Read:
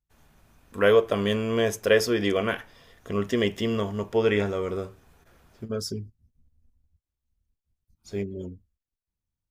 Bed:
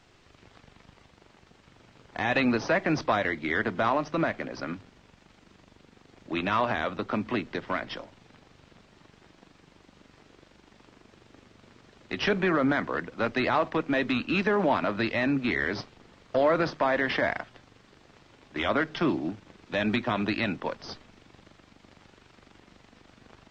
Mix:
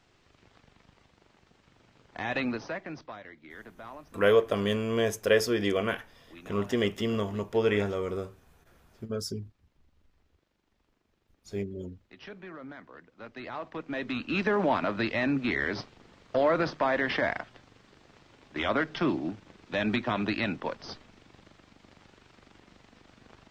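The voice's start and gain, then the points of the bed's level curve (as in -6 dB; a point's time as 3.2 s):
3.40 s, -3.0 dB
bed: 2.42 s -5.5 dB
3.21 s -19.5 dB
13.07 s -19.5 dB
14.46 s -1.5 dB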